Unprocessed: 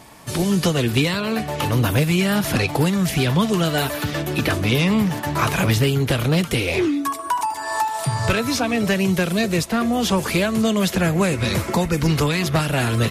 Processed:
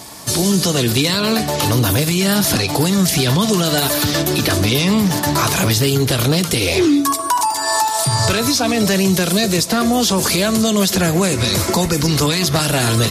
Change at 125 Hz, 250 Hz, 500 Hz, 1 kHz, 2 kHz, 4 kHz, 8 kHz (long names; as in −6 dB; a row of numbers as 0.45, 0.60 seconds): +2.5, +3.5, +4.0, +4.0, +2.0, +8.0, +11.5 decibels